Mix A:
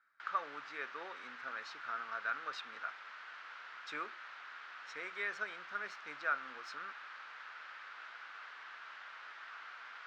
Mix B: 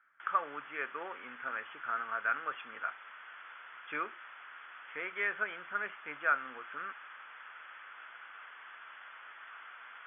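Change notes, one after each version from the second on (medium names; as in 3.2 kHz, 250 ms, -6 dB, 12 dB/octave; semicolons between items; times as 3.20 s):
speech +5.5 dB; master: add brick-wall FIR low-pass 3.5 kHz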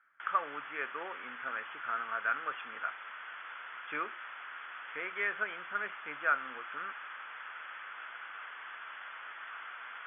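background +5.0 dB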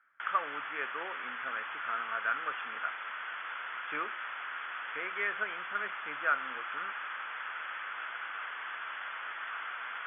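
background +5.5 dB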